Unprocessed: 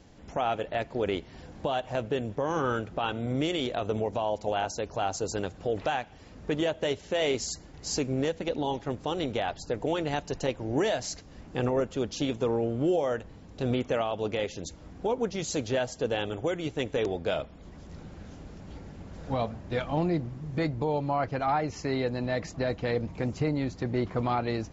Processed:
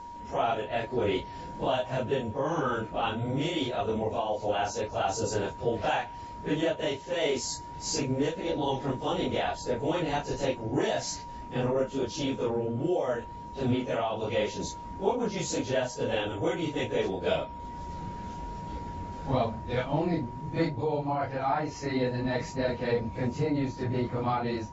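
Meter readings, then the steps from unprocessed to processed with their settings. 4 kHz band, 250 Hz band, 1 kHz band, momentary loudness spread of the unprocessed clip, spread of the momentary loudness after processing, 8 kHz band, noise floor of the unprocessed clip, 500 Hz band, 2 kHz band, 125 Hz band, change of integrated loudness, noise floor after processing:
0.0 dB, 0.0 dB, +1.0 dB, 9 LU, 7 LU, n/a, -49 dBFS, 0.0 dB, 0.0 dB, 0.0 dB, 0.0 dB, -42 dBFS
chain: phase scrambler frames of 0.1 s; whine 950 Hz -43 dBFS; vocal rider within 4 dB 0.5 s

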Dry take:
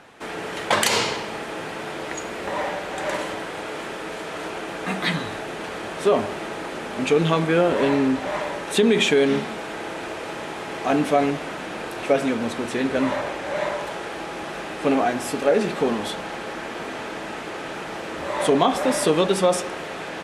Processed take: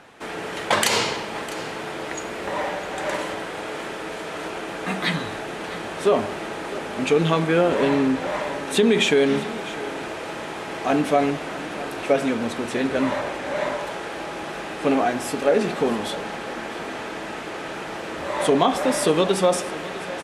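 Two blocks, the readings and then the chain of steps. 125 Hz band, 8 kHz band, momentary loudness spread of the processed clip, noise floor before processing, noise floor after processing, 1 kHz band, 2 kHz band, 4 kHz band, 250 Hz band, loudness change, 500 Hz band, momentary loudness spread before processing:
0.0 dB, 0.0 dB, 12 LU, -33 dBFS, -33 dBFS, 0.0 dB, 0.0 dB, 0.0 dB, 0.0 dB, 0.0 dB, 0.0 dB, 12 LU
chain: echo 0.654 s -17 dB; ending taper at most 260 dB/s

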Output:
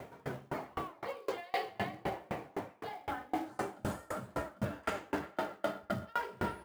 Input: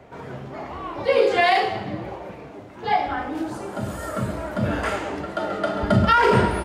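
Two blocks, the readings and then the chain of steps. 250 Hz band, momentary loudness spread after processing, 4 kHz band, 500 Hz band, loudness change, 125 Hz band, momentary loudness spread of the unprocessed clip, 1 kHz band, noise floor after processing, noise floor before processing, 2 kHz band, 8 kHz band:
-14.5 dB, 5 LU, -17.5 dB, -16.5 dB, -17.0 dB, -17.5 dB, 18 LU, -16.0 dB, -61 dBFS, -41 dBFS, -16.5 dB, -11.5 dB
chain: HPF 82 Hz 12 dB/oct; reverse; compressor 10:1, threshold -31 dBFS, peak gain reduction 18.5 dB; reverse; companded quantiser 6-bit; narrowing echo 0.382 s, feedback 47%, band-pass 1200 Hz, level -3 dB; dB-ramp tremolo decaying 3.9 Hz, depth 32 dB; gain +3.5 dB

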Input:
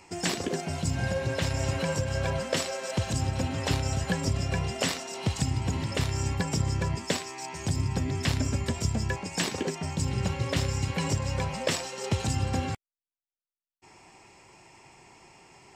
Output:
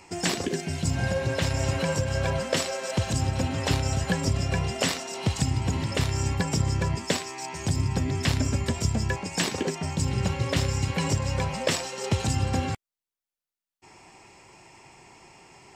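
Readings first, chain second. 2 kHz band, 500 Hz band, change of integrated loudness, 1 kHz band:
+2.5 dB, +2.5 dB, +2.5 dB, +2.5 dB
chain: spectral gain 0.46–0.83, 450–1500 Hz -7 dB; gain +2.5 dB

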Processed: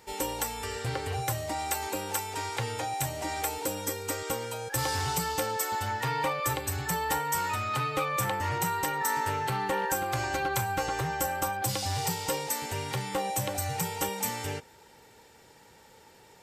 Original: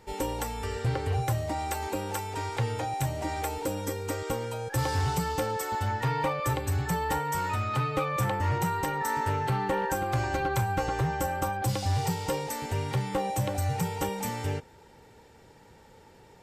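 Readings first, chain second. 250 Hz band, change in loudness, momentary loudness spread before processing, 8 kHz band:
-4.0 dB, -0.5 dB, 5 LU, +6.0 dB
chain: tilt +2 dB/oct

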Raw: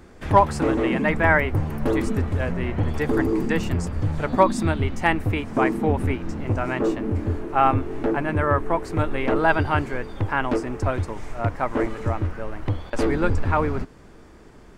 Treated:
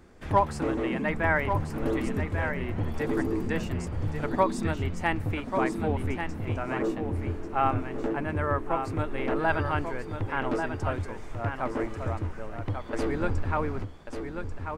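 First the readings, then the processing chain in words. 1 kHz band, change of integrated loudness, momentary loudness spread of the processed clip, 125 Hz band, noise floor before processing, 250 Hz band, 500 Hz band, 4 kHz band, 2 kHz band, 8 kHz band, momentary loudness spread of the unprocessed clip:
-6.0 dB, -6.5 dB, 8 LU, -6.0 dB, -47 dBFS, -6.5 dB, -6.0 dB, -6.0 dB, -6.0 dB, -6.0 dB, 8 LU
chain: echo 1.14 s -7 dB; gain -7 dB

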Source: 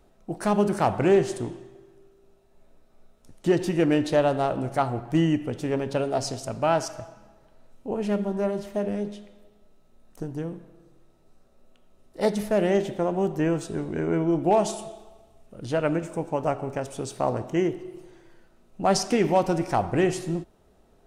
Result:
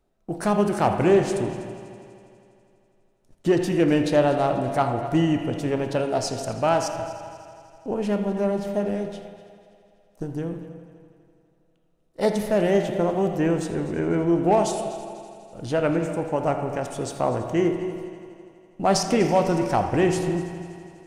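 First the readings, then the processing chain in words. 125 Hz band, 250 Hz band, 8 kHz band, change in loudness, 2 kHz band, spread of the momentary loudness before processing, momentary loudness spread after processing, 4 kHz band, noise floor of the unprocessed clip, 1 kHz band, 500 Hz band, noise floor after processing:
+2.0 dB, +2.5 dB, +2.0 dB, +2.0 dB, +2.0 dB, 14 LU, 17 LU, +2.0 dB, -59 dBFS, +2.5 dB, +2.0 dB, -63 dBFS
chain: gate -45 dBFS, range -14 dB; multi-head echo 82 ms, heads first and third, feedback 65%, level -17.5 dB; spring tank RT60 1.8 s, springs 35/47 ms, chirp 55 ms, DRR 8.5 dB; in parallel at -10.5 dB: soft clip -21.5 dBFS, distortion -10 dB

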